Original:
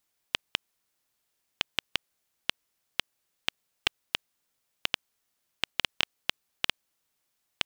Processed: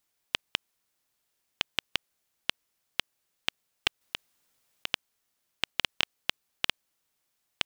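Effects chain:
0:04.01–0:04.94: compressor whose output falls as the input rises −31 dBFS, ratio −0.5

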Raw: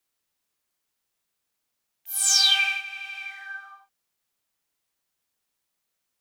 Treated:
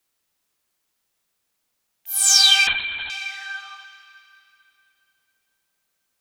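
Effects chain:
convolution reverb RT60 3.1 s, pre-delay 100 ms, DRR 10.5 dB
0:02.67–0:03.10: linear-prediction vocoder at 8 kHz whisper
level +5 dB

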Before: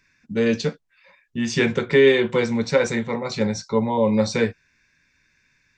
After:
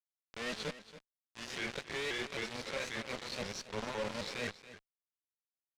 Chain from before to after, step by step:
peak hold with a rise ahead of every peak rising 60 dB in 0.46 s
meter weighting curve D
reversed playback
downward compressor 4 to 1, threshold −31 dBFS, peak gain reduction 19 dB
reversed playback
tuned comb filter 580 Hz, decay 0.26 s, harmonics odd, mix 70%
log-companded quantiser 2 bits
asymmetric clip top −34 dBFS, bottom −29 dBFS
high-frequency loss of the air 89 metres
on a send: single-tap delay 280 ms −15 dB
on the sum: pitch modulation by a square or saw wave saw up 3.8 Hz, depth 160 cents

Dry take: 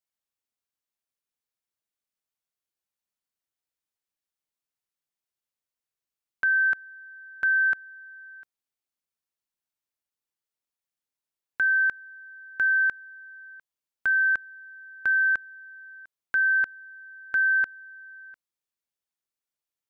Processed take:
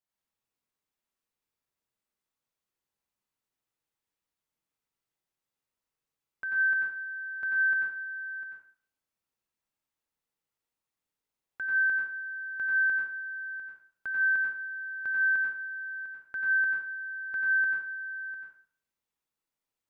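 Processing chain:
high-shelf EQ 2,100 Hz −8 dB
brickwall limiter −32 dBFS, peak gain reduction 11 dB
dense smooth reverb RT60 0.5 s, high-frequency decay 0.95×, pre-delay 80 ms, DRR −2.5 dB
level +2 dB

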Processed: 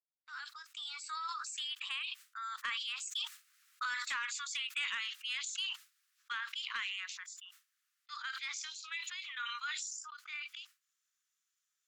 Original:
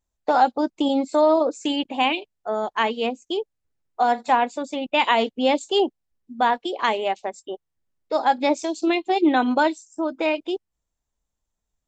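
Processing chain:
fade in at the beginning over 0.83 s
source passing by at 0:04.18, 16 m/s, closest 7.2 metres
Butterworth high-pass 1,200 Hz 72 dB per octave
noise gate with hold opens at −59 dBFS
downward compressor 5 to 1, threshold −45 dBFS, peak gain reduction 19 dB
sine wavefolder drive 4 dB, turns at −30 dBFS
level that may fall only so fast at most 24 dB per second
level +1 dB

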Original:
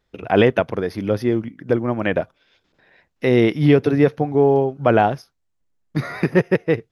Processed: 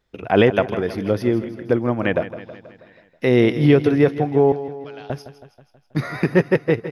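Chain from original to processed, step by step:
0:04.52–0:05.10: resonant band-pass 4,500 Hz, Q 4.1
repeating echo 161 ms, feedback 58%, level −13.5 dB

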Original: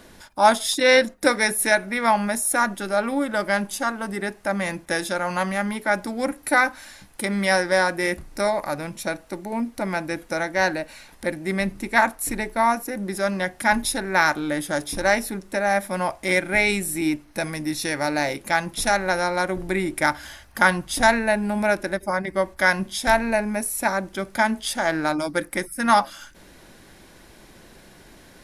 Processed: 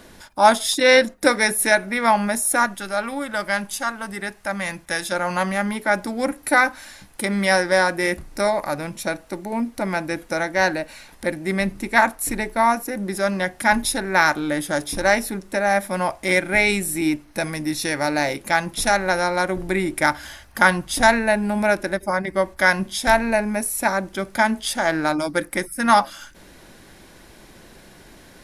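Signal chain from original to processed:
0:02.66–0:05.12: parametric band 340 Hz −8 dB 2.1 octaves
level +2 dB

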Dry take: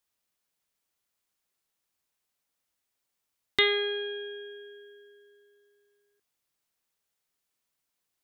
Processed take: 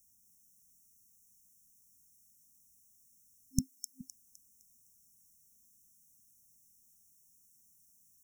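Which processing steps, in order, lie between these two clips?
0:03.60–0:04.01: Butterworth high-pass 200 Hz 48 dB per octave
brick-wall band-stop 260–5,400 Hz
delay with a high-pass on its return 256 ms, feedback 37%, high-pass 4,000 Hz, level −5 dB
level +16 dB

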